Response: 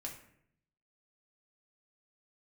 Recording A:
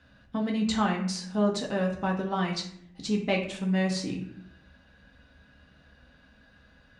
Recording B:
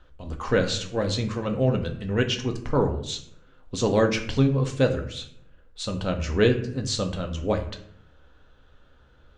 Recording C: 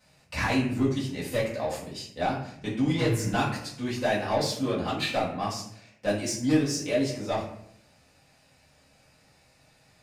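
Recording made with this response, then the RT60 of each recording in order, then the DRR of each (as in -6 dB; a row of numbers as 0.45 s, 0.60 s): A; 0.70 s, 0.70 s, 0.70 s; -1.0 dB, 3.0 dB, -9.0 dB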